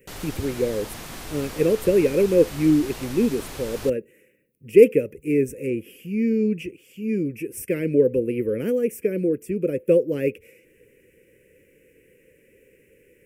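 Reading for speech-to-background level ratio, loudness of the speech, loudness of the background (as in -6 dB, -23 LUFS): 14.0 dB, -22.5 LUFS, -36.5 LUFS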